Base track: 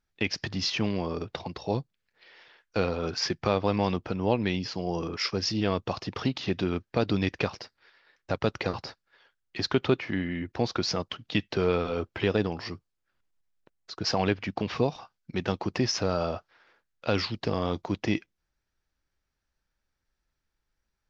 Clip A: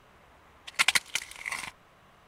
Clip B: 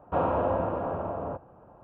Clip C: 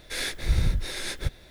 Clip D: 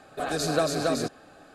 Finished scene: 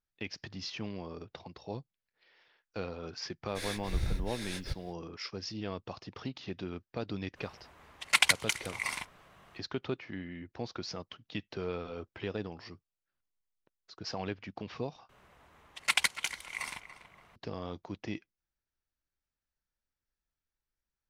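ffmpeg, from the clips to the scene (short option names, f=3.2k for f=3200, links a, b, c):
-filter_complex "[1:a]asplit=2[a][b];[0:a]volume=-11.5dB[c];[b]asplit=2[d][e];[e]adelay=286,lowpass=f=2.5k:p=1,volume=-11.5dB,asplit=2[f][g];[g]adelay=286,lowpass=f=2.5k:p=1,volume=0.38,asplit=2[h][i];[i]adelay=286,lowpass=f=2.5k:p=1,volume=0.38,asplit=2[j][k];[k]adelay=286,lowpass=f=2.5k:p=1,volume=0.38[l];[d][f][h][j][l]amix=inputs=5:normalize=0[m];[c]asplit=2[n][o];[n]atrim=end=15.094[p];[m]atrim=end=2.27,asetpts=PTS-STARTPTS,volume=-4dB[q];[o]atrim=start=17.356[r];[3:a]atrim=end=1.5,asetpts=PTS-STARTPTS,volume=-9dB,afade=t=in:d=0.05,afade=t=out:st=1.45:d=0.05,adelay=152145S[s];[a]atrim=end=2.27,asetpts=PTS-STARTPTS,volume=-0.5dB,afade=t=in:d=0.05,afade=t=out:st=2.22:d=0.05,adelay=7340[t];[p][q]acrossfade=d=0.004:c1=hsin:c2=hsin[u];[u][r]acrossfade=d=0.004:c1=hsin:c2=hsin[v];[v][s][t]amix=inputs=3:normalize=0"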